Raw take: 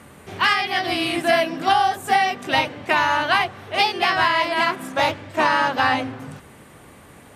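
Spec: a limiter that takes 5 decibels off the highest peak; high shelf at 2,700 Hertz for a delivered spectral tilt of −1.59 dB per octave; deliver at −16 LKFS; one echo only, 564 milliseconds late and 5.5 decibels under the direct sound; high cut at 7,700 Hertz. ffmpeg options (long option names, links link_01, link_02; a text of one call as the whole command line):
ffmpeg -i in.wav -af "lowpass=7700,highshelf=frequency=2700:gain=-7.5,alimiter=limit=-12.5dB:level=0:latency=1,aecho=1:1:564:0.531,volume=6.5dB" out.wav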